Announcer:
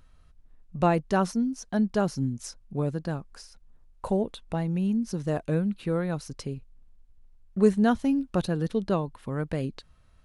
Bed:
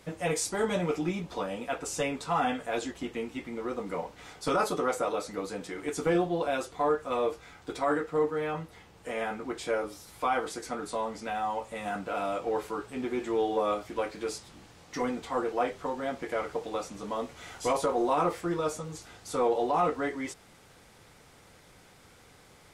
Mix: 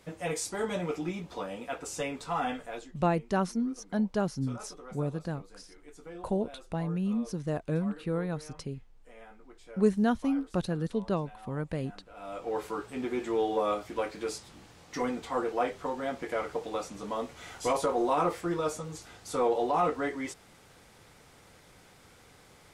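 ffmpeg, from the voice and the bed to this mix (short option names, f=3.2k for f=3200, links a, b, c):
-filter_complex "[0:a]adelay=2200,volume=-4dB[a];[1:a]volume=15dB,afade=t=out:st=2.54:d=0.38:silence=0.16788,afade=t=in:st=12.14:d=0.52:silence=0.11885[b];[a][b]amix=inputs=2:normalize=0"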